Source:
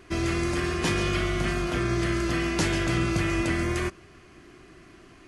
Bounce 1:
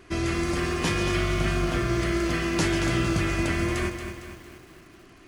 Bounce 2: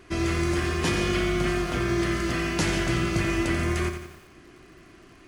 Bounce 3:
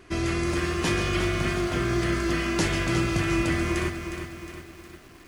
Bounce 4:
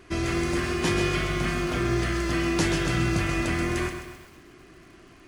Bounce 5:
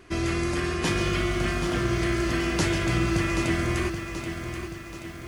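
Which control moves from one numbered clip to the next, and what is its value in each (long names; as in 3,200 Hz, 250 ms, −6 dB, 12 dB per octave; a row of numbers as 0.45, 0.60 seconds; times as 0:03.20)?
feedback echo at a low word length, delay time: 228, 87, 360, 130, 780 milliseconds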